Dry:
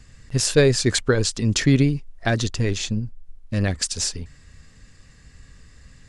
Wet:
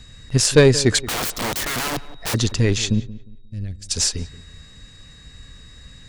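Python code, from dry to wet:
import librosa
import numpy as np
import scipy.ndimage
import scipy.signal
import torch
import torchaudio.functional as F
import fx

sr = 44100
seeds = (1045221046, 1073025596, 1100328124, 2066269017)

p1 = x + 10.0 ** (-52.0 / 20.0) * np.sin(2.0 * np.pi * 3800.0 * np.arange(len(x)) / sr)
p2 = fx.rider(p1, sr, range_db=5, speed_s=2.0)
p3 = p1 + (p2 * librosa.db_to_amplitude(0.5))
p4 = fx.cheby_harmonics(p3, sr, harmonics=(4, 6), levels_db=(-22, -30), full_scale_db=1.0)
p5 = fx.overflow_wrap(p4, sr, gain_db=16.5, at=(0.99, 2.33), fade=0.02)
p6 = fx.tone_stack(p5, sr, knobs='10-0-1', at=(3.0, 3.89))
p7 = p6 + fx.echo_filtered(p6, sr, ms=177, feedback_pct=30, hz=1900.0, wet_db=-16.5, dry=0)
y = p7 * librosa.db_to_amplitude(-3.0)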